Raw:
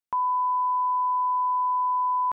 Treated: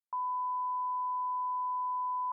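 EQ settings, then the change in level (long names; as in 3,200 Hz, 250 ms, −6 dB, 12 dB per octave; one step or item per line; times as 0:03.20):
high-pass filter 860 Hz 24 dB per octave
low-pass filter 1,100 Hz 24 dB per octave
−6.5 dB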